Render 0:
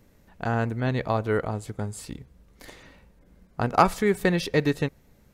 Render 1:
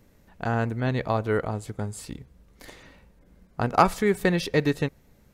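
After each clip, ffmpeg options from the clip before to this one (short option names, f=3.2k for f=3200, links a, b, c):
-af anull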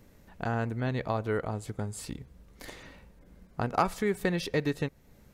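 -af "acompressor=threshold=-38dB:ratio=1.5,volume=1dB"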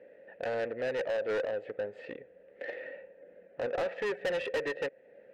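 -filter_complex "[0:a]adynamicsmooth=sensitivity=4:basefreq=1.7k,asplit=3[a][b][c];[a]bandpass=f=530:t=q:w=8,volume=0dB[d];[b]bandpass=f=1.84k:t=q:w=8,volume=-6dB[e];[c]bandpass=f=2.48k:t=q:w=8,volume=-9dB[f];[d][e][f]amix=inputs=3:normalize=0,asplit=2[g][h];[h]highpass=f=720:p=1,volume=29dB,asoftclip=type=tanh:threshold=-23.5dB[i];[g][i]amix=inputs=2:normalize=0,lowpass=f=2.7k:p=1,volume=-6dB"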